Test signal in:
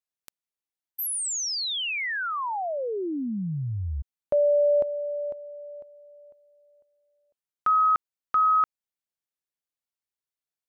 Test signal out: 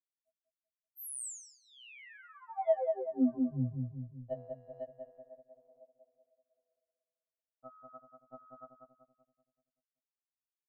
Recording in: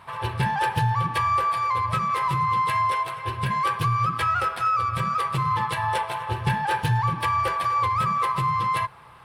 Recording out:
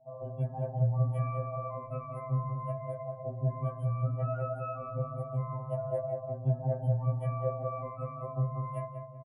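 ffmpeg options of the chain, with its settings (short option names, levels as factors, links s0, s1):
-filter_complex "[0:a]acrossover=split=1100[s0][s1];[s0]aeval=exprs='val(0)*(1-0.5/2+0.5/2*cos(2*PI*1.2*n/s))':c=same[s2];[s1]aeval=exprs='val(0)*(1-0.5/2-0.5/2*cos(2*PI*1.2*n/s))':c=same[s3];[s2][s3]amix=inputs=2:normalize=0,firequalizer=gain_entry='entry(110,0);entry(230,13);entry(360,-6);entry(650,15);entry(980,-16);entry(1400,-17);entry(3000,-13);entry(4400,-24);entry(7900,-3);entry(14000,-6)':delay=0.05:min_phase=1,asplit=2[s4][s5];[s5]asoftclip=type=tanh:threshold=0.0376,volume=0.422[s6];[s4][s6]amix=inputs=2:normalize=0,afftdn=nr=32:nf=-40,asplit=2[s7][s8];[s8]adelay=191,lowpass=f=1100:p=1,volume=0.668,asplit=2[s9][s10];[s10]adelay=191,lowpass=f=1100:p=1,volume=0.53,asplit=2[s11][s12];[s12]adelay=191,lowpass=f=1100:p=1,volume=0.53,asplit=2[s13][s14];[s14]adelay=191,lowpass=f=1100:p=1,volume=0.53,asplit=2[s15][s16];[s16]adelay=191,lowpass=f=1100:p=1,volume=0.53,asplit=2[s17][s18];[s18]adelay=191,lowpass=f=1100:p=1,volume=0.53,asplit=2[s19][s20];[s20]adelay=191,lowpass=f=1100:p=1,volume=0.53[s21];[s9][s11][s13][s15][s17][s19][s21]amix=inputs=7:normalize=0[s22];[s7][s22]amix=inputs=2:normalize=0,afftfilt=real='re*2.45*eq(mod(b,6),0)':imag='im*2.45*eq(mod(b,6),0)':win_size=2048:overlap=0.75,volume=0.376"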